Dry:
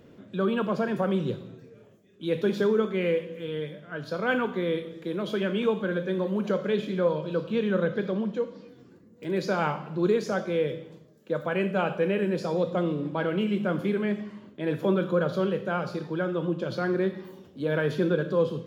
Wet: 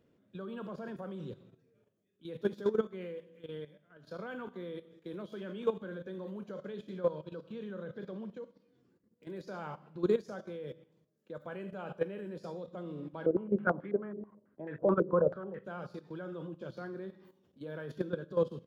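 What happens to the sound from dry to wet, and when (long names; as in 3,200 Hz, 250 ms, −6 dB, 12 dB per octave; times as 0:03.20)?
0:13.26–0:15.64: low-pass on a step sequencer 9.2 Hz 420–1,900 Hz
whole clip: dynamic equaliser 2,400 Hz, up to −6 dB, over −49 dBFS, Q 2.1; output level in coarse steps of 11 dB; expander for the loud parts 1.5 to 1, over −46 dBFS; level −2.5 dB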